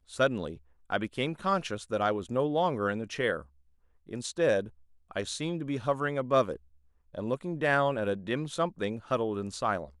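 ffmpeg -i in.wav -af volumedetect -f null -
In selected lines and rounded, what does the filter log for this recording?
mean_volume: -31.0 dB
max_volume: -12.6 dB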